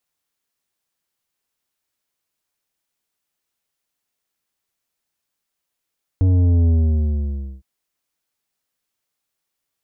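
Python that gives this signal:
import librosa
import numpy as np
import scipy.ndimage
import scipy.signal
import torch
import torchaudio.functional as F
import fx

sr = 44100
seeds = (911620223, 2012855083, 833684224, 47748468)

y = fx.sub_drop(sr, level_db=-13, start_hz=94.0, length_s=1.41, drive_db=9.5, fade_s=0.94, end_hz=65.0)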